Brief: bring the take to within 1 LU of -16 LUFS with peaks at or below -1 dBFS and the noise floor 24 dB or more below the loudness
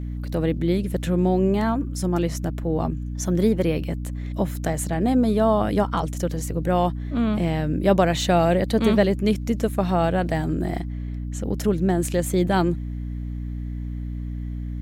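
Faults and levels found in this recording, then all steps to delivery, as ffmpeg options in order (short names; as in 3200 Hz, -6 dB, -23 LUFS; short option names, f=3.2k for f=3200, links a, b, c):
hum 60 Hz; harmonics up to 300 Hz; hum level -27 dBFS; loudness -23.5 LUFS; peak -5.0 dBFS; loudness target -16.0 LUFS
-> -af "bandreject=f=60:t=h:w=4,bandreject=f=120:t=h:w=4,bandreject=f=180:t=h:w=4,bandreject=f=240:t=h:w=4,bandreject=f=300:t=h:w=4"
-af "volume=7.5dB,alimiter=limit=-1dB:level=0:latency=1"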